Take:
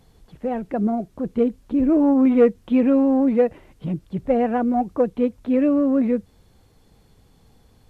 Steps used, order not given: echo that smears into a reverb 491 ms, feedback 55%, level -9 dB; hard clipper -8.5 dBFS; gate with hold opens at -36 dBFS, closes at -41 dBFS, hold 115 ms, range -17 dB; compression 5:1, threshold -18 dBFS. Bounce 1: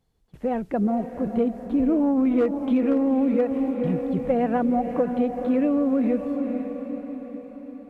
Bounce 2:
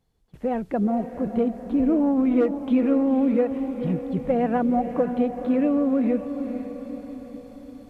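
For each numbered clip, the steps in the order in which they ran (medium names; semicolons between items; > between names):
gate with hold > echo that smears into a reverb > hard clipper > compression; hard clipper > compression > echo that smears into a reverb > gate with hold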